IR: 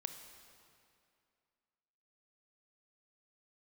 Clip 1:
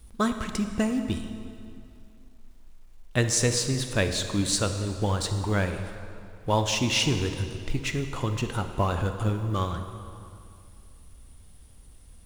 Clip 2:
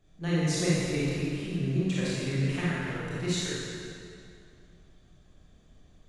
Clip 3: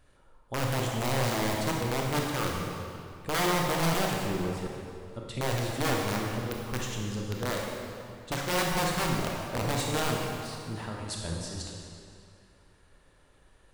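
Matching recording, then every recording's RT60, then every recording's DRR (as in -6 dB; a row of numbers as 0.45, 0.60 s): 1; 2.4, 2.4, 2.4 s; 7.0, -9.0, -1.5 dB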